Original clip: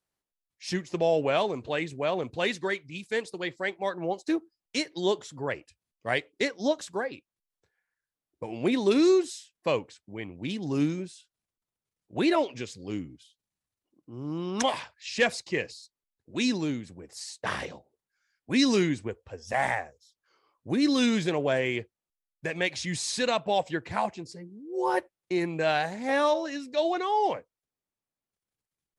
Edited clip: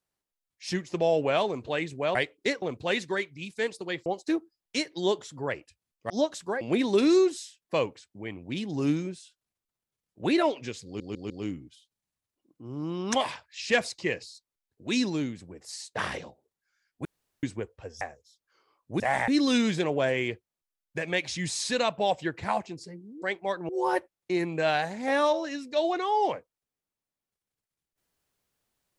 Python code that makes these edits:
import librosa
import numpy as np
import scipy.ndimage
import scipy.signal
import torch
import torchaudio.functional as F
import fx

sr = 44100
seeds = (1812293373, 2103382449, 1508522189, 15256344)

y = fx.edit(x, sr, fx.move(start_s=3.59, length_s=0.47, to_s=24.7),
    fx.move(start_s=6.1, length_s=0.47, to_s=2.15),
    fx.cut(start_s=7.08, length_s=1.46),
    fx.stutter(start_s=12.78, slice_s=0.15, count=4),
    fx.room_tone_fill(start_s=18.53, length_s=0.38),
    fx.move(start_s=19.49, length_s=0.28, to_s=20.76), tone=tone)